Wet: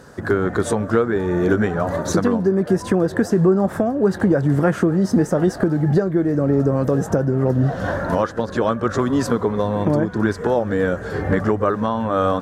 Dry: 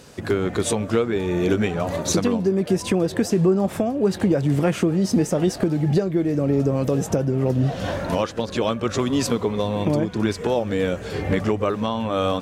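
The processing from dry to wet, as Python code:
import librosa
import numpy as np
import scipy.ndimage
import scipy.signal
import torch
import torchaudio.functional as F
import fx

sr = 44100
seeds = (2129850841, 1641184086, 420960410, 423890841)

y = fx.high_shelf_res(x, sr, hz=2000.0, db=-6.5, q=3.0)
y = y * librosa.db_to_amplitude(2.5)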